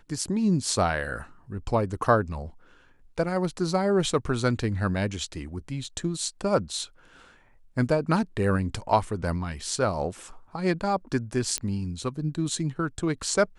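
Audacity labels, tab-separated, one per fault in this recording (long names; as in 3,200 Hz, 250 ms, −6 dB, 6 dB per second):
11.580000	11.580000	click −12 dBFS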